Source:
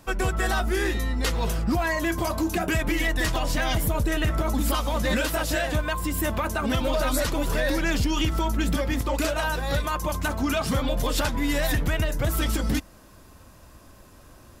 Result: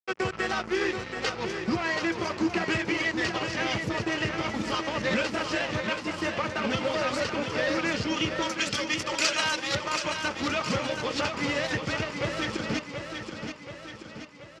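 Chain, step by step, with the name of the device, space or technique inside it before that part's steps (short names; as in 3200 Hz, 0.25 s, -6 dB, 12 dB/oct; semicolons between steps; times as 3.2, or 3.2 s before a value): HPF 110 Hz 12 dB/oct; 8.42–9.75 tilt +4.5 dB/oct; blown loudspeaker (crossover distortion -32.5 dBFS; speaker cabinet 120–5300 Hz, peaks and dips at 160 Hz -5 dB, 270 Hz -9 dB, 680 Hz -8 dB, 1000 Hz -5 dB, 1600 Hz -5 dB, 3700 Hz -8 dB); feedback echo 0.729 s, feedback 54%, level -7 dB; gain +5 dB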